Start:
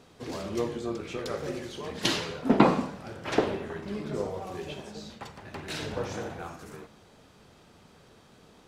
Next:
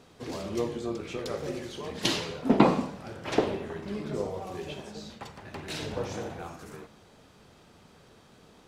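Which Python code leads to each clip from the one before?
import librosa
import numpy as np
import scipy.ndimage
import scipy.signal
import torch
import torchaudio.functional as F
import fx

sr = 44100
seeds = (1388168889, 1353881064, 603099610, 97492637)

y = fx.dynamic_eq(x, sr, hz=1500.0, q=1.9, threshold_db=-47.0, ratio=4.0, max_db=-4)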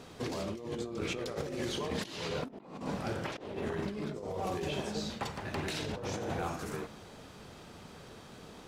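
y = fx.over_compress(x, sr, threshold_db=-39.0, ratio=-1.0)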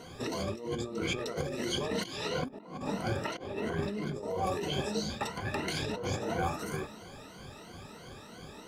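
y = fx.spec_ripple(x, sr, per_octave=1.9, drift_hz=3.0, depth_db=16)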